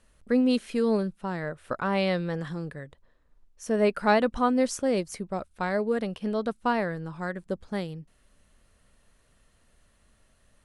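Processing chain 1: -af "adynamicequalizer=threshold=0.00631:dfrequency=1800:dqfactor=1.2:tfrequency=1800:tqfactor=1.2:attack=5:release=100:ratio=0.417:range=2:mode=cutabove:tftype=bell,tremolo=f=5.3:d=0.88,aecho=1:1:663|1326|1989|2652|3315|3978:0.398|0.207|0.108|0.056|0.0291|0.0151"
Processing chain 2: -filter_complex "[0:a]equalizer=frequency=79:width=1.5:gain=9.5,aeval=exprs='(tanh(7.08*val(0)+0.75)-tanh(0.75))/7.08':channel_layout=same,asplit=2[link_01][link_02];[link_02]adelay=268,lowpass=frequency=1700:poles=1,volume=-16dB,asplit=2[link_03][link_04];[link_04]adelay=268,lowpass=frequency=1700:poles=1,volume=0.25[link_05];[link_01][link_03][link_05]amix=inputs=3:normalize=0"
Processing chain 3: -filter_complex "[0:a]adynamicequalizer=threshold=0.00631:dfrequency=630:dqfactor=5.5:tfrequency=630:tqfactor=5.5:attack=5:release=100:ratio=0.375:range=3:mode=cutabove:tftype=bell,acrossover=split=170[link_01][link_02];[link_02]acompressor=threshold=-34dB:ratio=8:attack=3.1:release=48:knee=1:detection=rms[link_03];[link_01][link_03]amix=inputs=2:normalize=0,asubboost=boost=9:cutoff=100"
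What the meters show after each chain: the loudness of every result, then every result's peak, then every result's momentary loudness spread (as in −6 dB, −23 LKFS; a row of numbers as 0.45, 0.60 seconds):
−32.0, −31.0, −36.0 LKFS; −13.0, −13.0, −9.5 dBFS; 16, 12, 21 LU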